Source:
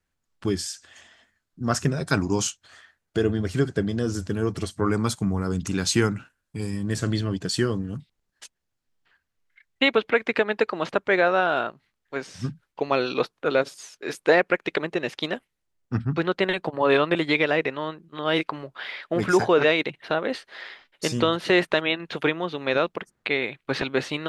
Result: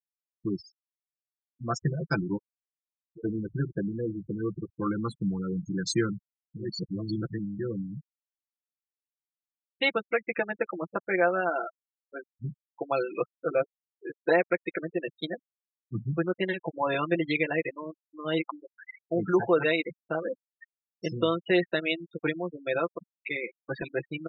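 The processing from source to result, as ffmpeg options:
-filter_complex "[0:a]asplit=3[a][b][c];[a]afade=t=out:st=2.36:d=0.02[d];[b]acompressor=threshold=-42dB:ratio=2.5:attack=3.2:release=140:knee=1:detection=peak,afade=t=in:st=2.36:d=0.02,afade=t=out:st=3.23:d=0.02[e];[c]afade=t=in:st=3.23:d=0.02[f];[d][e][f]amix=inputs=3:normalize=0,asplit=3[g][h][i];[g]atrim=end=6.79,asetpts=PTS-STARTPTS[j];[h]atrim=start=6.55:end=7.73,asetpts=PTS-STARTPTS,areverse[k];[i]atrim=start=7.49,asetpts=PTS-STARTPTS[l];[j][k]acrossfade=d=0.24:c1=tri:c2=tri[m];[m][l]acrossfade=d=0.24:c1=tri:c2=tri,afftfilt=real='re*gte(hypot(re,im),0.1)':imag='im*gte(hypot(re,im),0.1)':win_size=1024:overlap=0.75,aecho=1:1:5.9:0.85,volume=-7.5dB"

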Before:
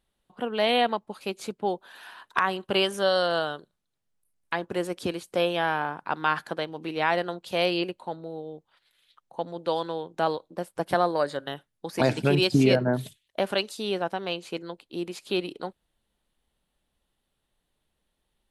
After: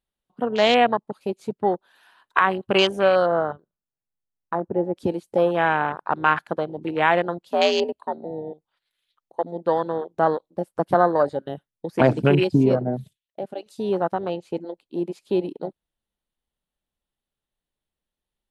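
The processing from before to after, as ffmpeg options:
-filter_complex "[0:a]asplit=3[a][b][c];[a]afade=t=out:st=3.25:d=0.02[d];[b]lowpass=1.4k,afade=t=in:st=3.25:d=0.02,afade=t=out:st=4.95:d=0.02[e];[c]afade=t=in:st=4.95:d=0.02[f];[d][e][f]amix=inputs=3:normalize=0,asettb=1/sr,asplit=3[g][h][i];[g]atrim=end=7.484[j];[h]atrim=start=7.48:end=8.25,asetpts=PTS-STARTPTS,afade=t=in:d=0.004:c=qsin,afade=t=out:st=0.766:d=0.004:c=qsin,afreqshift=66[k];[i]atrim=start=8.246[l];[j][k]acrossfade=d=0.004:c1=hsin:c2=qsin[m];[m][l]acrossfade=d=0.004:c1=qsin:c2=hsin,asplit=2[n][o];[n]atrim=end=13.66,asetpts=PTS-STARTPTS,afade=t=out:st=12.19:d=1.47:c=qua:silence=0.316228[p];[o]atrim=start=13.66,asetpts=PTS-STARTPTS,afade=t=in:d=0.004:c=hsin:silence=0.316228[q];[p][q]concat=n=2:v=0:a=1,afwtdn=0.0316,volume=6dB"

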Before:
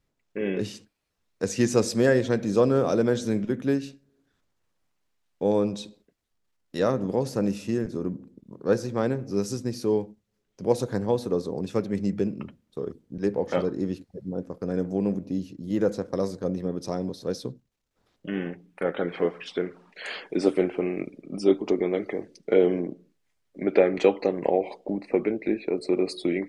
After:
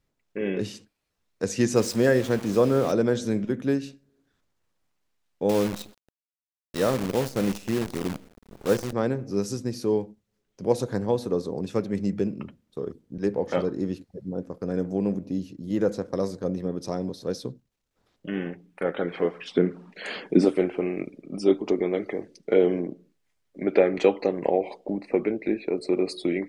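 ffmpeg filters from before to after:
-filter_complex "[0:a]asettb=1/sr,asplit=3[a][b][c];[a]atrim=end=1.764[d];[b]atrim=start=1.76:end=2.92,asetpts=PTS-STARTPTS,afade=t=in:d=0.004:c=qsin,afade=t=out:st=1.156:d=0.004:c=qsin,aeval=exprs='val(0)*gte(abs(val(0)),0.02)':c=same[e];[c]atrim=start=2.916[f];[d][e]acrossfade=d=0.004:c1=hsin:c2=qsin[g];[g][f]acrossfade=d=0.004:c1=qsin:c2=hsin,asettb=1/sr,asplit=3[h][i][j];[h]atrim=end=5.494[k];[i]atrim=start=5.49:end=8.93,asetpts=PTS-STARTPTS,afade=t=in:d=0.004:c=qsin,afade=t=out:st=3.436:d=0.004:c=qsin,acrusher=bits=6:dc=4:mix=0:aa=0.000001[l];[j]atrim=start=8.926[m];[k][l]acrossfade=d=0.004:c1=hsin:c2=qsin[n];[n][m]acrossfade=d=0.004:c1=qsin:c2=hsin,asettb=1/sr,asplit=3[o][p][q];[o]atrim=end=19.544[r];[p]atrim=start=19.54:end=20.45,asetpts=PTS-STARTPTS,afade=t=in:d=0.004:c=qsin,afade=t=out:st=0.906:d=0.004:c=qsin,equalizer=f=200:w=0.73:g=12.5[s];[q]atrim=start=20.446[t];[r][s]acrossfade=d=0.004:c1=hsin:c2=qsin[u];[u][t]acrossfade=d=0.004:c1=qsin:c2=hsin"

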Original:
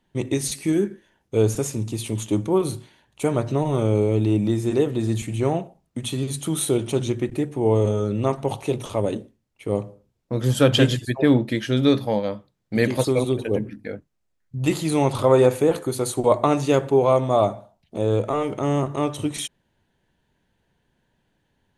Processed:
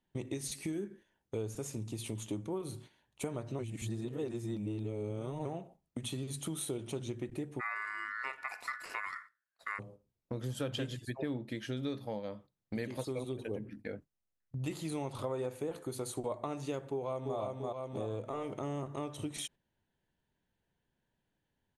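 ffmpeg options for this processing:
-filter_complex "[0:a]asplit=3[a][b][c];[a]afade=t=out:st=7.59:d=0.02[d];[b]aeval=exprs='val(0)*sin(2*PI*1600*n/s)':c=same,afade=t=in:st=7.59:d=0.02,afade=t=out:st=9.78:d=0.02[e];[c]afade=t=in:st=9.78:d=0.02[f];[d][e][f]amix=inputs=3:normalize=0,asplit=2[g][h];[h]afade=t=in:st=16.91:d=0.01,afade=t=out:st=17.38:d=0.01,aecho=0:1:340|680|1020|1360|1700|2040:0.668344|0.300755|0.13534|0.0609028|0.0274063|0.0123328[i];[g][i]amix=inputs=2:normalize=0,asplit=3[j][k][l];[j]atrim=end=3.592[m];[k]atrim=start=3.588:end=5.452,asetpts=PTS-STARTPTS,areverse[n];[l]atrim=start=5.448[o];[m][n]acrossfade=d=0.004:c1=hsin:c2=hsin[p];[p][o]acrossfade=d=0.004:c1=hsin:c2=hsin,agate=range=-7dB:threshold=-41dB:ratio=16:detection=peak,acompressor=threshold=-30dB:ratio=4,volume=-6.5dB"

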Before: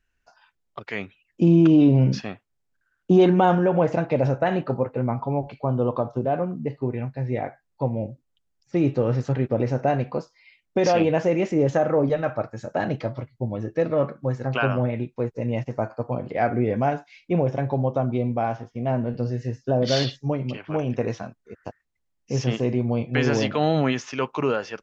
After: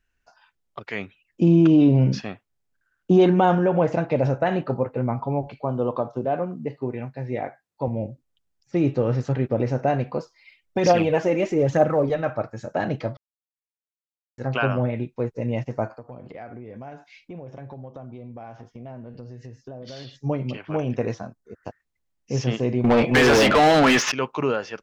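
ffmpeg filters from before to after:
-filter_complex "[0:a]asettb=1/sr,asplit=3[a][b][c];[a]atrim=end=5.634[d];[b]atrim=start=5.63:end=7.88,asetpts=PTS-STARTPTS,afade=t=in:d=0.004:c=qsin,afade=t=out:st=2.246:d=0.004:c=qsin,highpass=f=180:p=1[e];[c]atrim=start=7.876[f];[d][e]acrossfade=d=0.004:c1=hsin:c2=qsin[g];[g][f]acrossfade=d=0.004:c1=qsin:c2=hsin,asplit=3[h][i][j];[h]afade=t=out:st=10.19:d=0.02[k];[i]aphaser=in_gain=1:out_gain=1:delay=4:decay=0.48:speed=1.1:type=triangular,afade=t=in:st=10.19:d=0.02,afade=t=out:st=12.15:d=0.02[l];[j]afade=t=in:st=12.15:d=0.02[m];[k][l][m]amix=inputs=3:normalize=0,asettb=1/sr,asplit=3[n][o][p];[n]atrim=end=15.904[q];[o]atrim=start=15.9:end=20.16,asetpts=PTS-STARTPTS,afade=t=in:d=0.004:c=qsin,afade=t=out:st=4.256:d=0.004:c=qsin,acompressor=threshold=-37dB:ratio=5:attack=3.2:release=140:knee=1:detection=peak[r];[p]atrim=start=20.156[s];[q][r]acrossfade=d=0.004:c1=hsin:c2=qsin[t];[t][s]acrossfade=d=0.004:c1=qsin:c2=hsin,asettb=1/sr,asplit=3[u][v][w];[u]atrim=end=21.144[x];[v]atrim=start=21.14:end=21.63,asetpts=PTS-STARTPTS,afade=t=in:d=0.004:c=qsin,afade=t=out:st=0.486:d=0.004:c=qsin,equalizer=f=2.6k:t=o:w=1:g=-10.5[y];[w]atrim=start=21.626[z];[x][y]acrossfade=d=0.004:c1=hsin:c2=qsin[aa];[aa][z]acrossfade=d=0.004:c1=qsin:c2=hsin,asettb=1/sr,asplit=3[ab][ac][ad];[ab]atrim=end=22.844[ae];[ac]atrim=start=22.84:end=24.12,asetpts=PTS-STARTPTS,afade=t=in:d=0.004:c=qsin,afade=t=out:st=1.276:d=0.004:c=qsin,asplit=2[af][ag];[ag]highpass=f=720:p=1,volume=29dB,asoftclip=type=tanh:threshold=-8dB[ah];[af][ah]amix=inputs=2:normalize=0,lowpass=f=3.2k:p=1,volume=-6dB[ai];[ad]atrim=start=24.116[aj];[ae][ai]acrossfade=d=0.004:c1=hsin:c2=qsin[ak];[ak][aj]acrossfade=d=0.004:c1=qsin:c2=hsin,asplit=3[al][am][an];[al]atrim=end=13.17,asetpts=PTS-STARTPTS,afade=t=out:st=13.166:d=0.004:c=hsin[ao];[am]atrim=start=13.17:end=14.38,asetpts=PTS-STARTPTS,volume=0[ap];[an]atrim=start=14.38,asetpts=PTS-STARTPTS,afade=t=in:d=0.004:c=hsin[aq];[ao][ap][aq]concat=n=3:v=0:a=1"

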